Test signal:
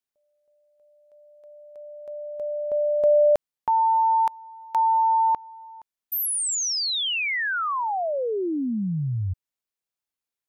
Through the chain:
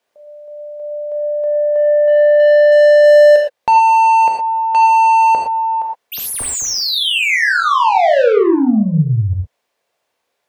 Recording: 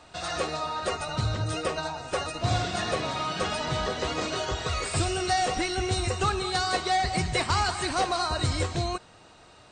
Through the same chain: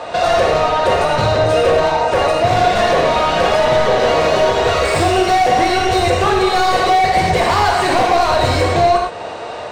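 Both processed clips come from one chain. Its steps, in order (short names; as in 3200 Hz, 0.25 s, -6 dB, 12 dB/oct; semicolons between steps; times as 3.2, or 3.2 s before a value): bell 550 Hz +9.5 dB 0.86 oct; overdrive pedal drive 29 dB, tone 1500 Hz, clips at -4.5 dBFS; low shelf 120 Hz +6 dB; notch 1300 Hz, Q 13; non-linear reverb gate 0.14 s flat, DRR 0 dB; in parallel at +2 dB: compressor, threshold -18 dBFS; on the sum: gain -5.5 dB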